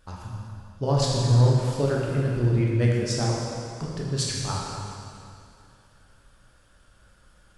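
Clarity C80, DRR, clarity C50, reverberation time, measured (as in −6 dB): 0.5 dB, −4.0 dB, −1.0 dB, 2.5 s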